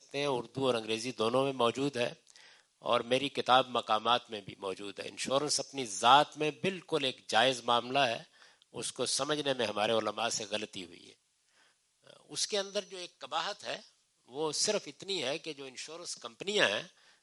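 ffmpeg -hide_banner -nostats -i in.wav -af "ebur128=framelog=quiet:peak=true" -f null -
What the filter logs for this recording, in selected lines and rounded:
Integrated loudness:
  I:         -31.7 LUFS
  Threshold: -42.6 LUFS
Loudness range:
  LRA:         8.2 LU
  Threshold: -52.5 LUFS
  LRA low:   -37.8 LUFS
  LRA high:  -29.6 LUFS
True peak:
  Peak:       -7.8 dBFS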